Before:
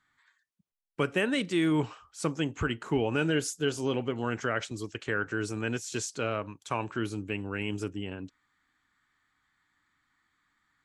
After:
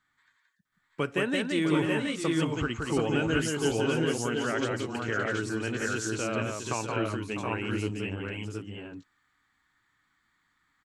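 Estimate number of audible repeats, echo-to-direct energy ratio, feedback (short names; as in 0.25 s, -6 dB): 3, 1.0 dB, no steady repeat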